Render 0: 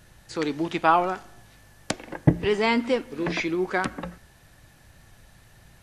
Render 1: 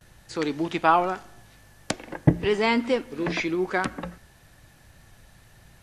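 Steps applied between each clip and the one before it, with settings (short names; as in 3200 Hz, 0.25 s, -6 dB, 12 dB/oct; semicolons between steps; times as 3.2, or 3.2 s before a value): gate with hold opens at -45 dBFS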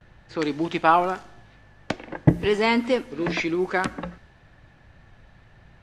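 low-pass opened by the level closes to 2600 Hz, open at -19 dBFS; gain +1.5 dB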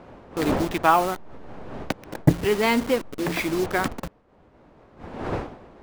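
level-crossing sampler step -27.5 dBFS; wind noise 640 Hz -36 dBFS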